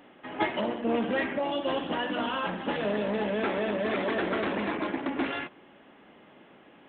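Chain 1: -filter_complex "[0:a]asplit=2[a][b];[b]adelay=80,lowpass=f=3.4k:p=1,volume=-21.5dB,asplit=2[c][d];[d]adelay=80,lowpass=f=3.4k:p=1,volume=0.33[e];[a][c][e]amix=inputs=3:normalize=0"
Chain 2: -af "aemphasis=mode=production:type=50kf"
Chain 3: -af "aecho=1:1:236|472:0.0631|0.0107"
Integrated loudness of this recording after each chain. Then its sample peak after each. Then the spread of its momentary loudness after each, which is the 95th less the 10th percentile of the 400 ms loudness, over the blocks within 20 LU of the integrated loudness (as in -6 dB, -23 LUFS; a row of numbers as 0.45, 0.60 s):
-30.0, -29.5, -30.0 LUFS; -13.5, -13.0, -13.5 dBFS; 3, 3, 3 LU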